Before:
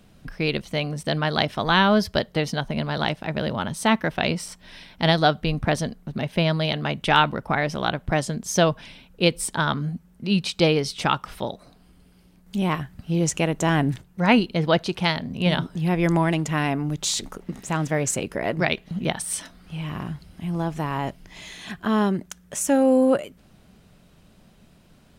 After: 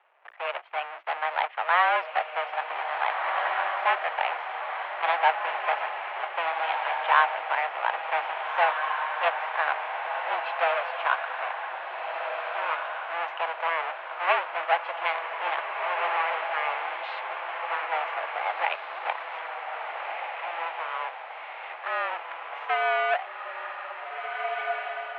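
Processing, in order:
each half-wave held at its own peak
feedback delay with all-pass diffusion 1,725 ms, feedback 47%, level −4 dB
single-sideband voice off tune +170 Hz 500–2,600 Hz
level −5.5 dB

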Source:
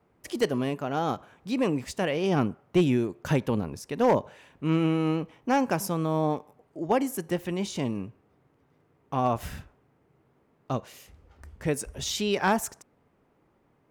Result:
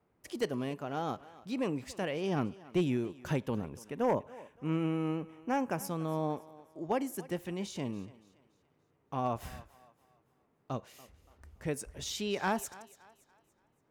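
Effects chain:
0:03.55–0:05.85: parametric band 4,200 Hz −11.5 dB 0.54 octaves
feedback echo with a high-pass in the loop 285 ms, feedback 39%, high-pass 330 Hz, level −18.5 dB
level −7.5 dB

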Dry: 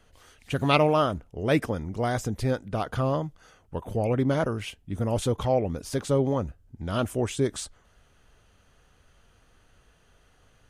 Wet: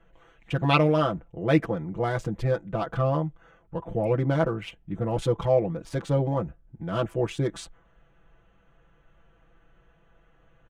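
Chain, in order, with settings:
adaptive Wiener filter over 9 samples
high-shelf EQ 7,000 Hz −11.5 dB
comb filter 6 ms, depth 92%
level −1.5 dB

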